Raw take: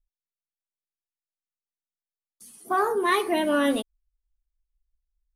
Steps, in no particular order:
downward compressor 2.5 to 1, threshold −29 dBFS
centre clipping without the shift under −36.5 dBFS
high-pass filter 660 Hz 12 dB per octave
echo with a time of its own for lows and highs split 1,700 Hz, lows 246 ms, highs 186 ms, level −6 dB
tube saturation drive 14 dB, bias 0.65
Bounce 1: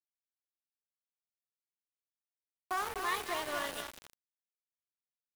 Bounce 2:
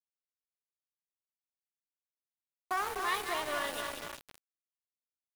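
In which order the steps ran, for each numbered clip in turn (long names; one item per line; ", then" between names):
downward compressor, then echo with a time of its own for lows and highs, then tube saturation, then high-pass filter, then centre clipping without the shift
echo with a time of its own for lows and highs, then tube saturation, then downward compressor, then high-pass filter, then centre clipping without the shift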